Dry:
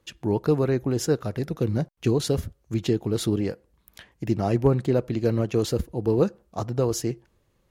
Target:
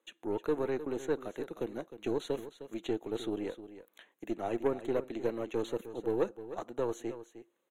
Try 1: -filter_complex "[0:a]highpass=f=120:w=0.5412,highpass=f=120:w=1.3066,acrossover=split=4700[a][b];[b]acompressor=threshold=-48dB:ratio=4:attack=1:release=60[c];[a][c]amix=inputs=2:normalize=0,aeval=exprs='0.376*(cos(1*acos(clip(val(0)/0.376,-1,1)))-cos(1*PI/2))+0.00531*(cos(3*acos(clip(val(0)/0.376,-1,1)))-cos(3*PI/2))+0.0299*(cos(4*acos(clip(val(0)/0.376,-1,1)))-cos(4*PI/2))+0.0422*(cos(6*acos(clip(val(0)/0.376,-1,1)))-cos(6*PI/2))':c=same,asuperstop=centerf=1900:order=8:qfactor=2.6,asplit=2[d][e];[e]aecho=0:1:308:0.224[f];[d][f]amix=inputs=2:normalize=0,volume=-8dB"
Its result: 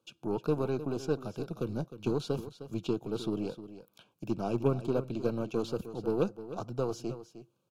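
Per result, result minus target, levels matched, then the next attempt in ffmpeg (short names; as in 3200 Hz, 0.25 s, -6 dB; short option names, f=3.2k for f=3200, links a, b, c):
125 Hz band +10.0 dB; 2000 Hz band -4.5 dB
-filter_complex "[0:a]highpass=f=280:w=0.5412,highpass=f=280:w=1.3066,acrossover=split=4700[a][b];[b]acompressor=threshold=-48dB:ratio=4:attack=1:release=60[c];[a][c]amix=inputs=2:normalize=0,aeval=exprs='0.376*(cos(1*acos(clip(val(0)/0.376,-1,1)))-cos(1*PI/2))+0.00531*(cos(3*acos(clip(val(0)/0.376,-1,1)))-cos(3*PI/2))+0.0299*(cos(4*acos(clip(val(0)/0.376,-1,1)))-cos(4*PI/2))+0.0422*(cos(6*acos(clip(val(0)/0.376,-1,1)))-cos(6*PI/2))':c=same,asuperstop=centerf=1900:order=8:qfactor=2.6,asplit=2[d][e];[e]aecho=0:1:308:0.224[f];[d][f]amix=inputs=2:normalize=0,volume=-8dB"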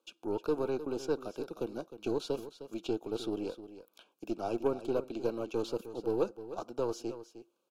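2000 Hz band -3.5 dB
-filter_complex "[0:a]highpass=f=280:w=0.5412,highpass=f=280:w=1.3066,acrossover=split=4700[a][b];[b]acompressor=threshold=-48dB:ratio=4:attack=1:release=60[c];[a][c]amix=inputs=2:normalize=0,aeval=exprs='0.376*(cos(1*acos(clip(val(0)/0.376,-1,1)))-cos(1*PI/2))+0.00531*(cos(3*acos(clip(val(0)/0.376,-1,1)))-cos(3*PI/2))+0.0299*(cos(4*acos(clip(val(0)/0.376,-1,1)))-cos(4*PI/2))+0.0422*(cos(6*acos(clip(val(0)/0.376,-1,1)))-cos(6*PI/2))':c=same,asuperstop=centerf=5000:order=8:qfactor=2.6,asplit=2[d][e];[e]aecho=0:1:308:0.224[f];[d][f]amix=inputs=2:normalize=0,volume=-8dB"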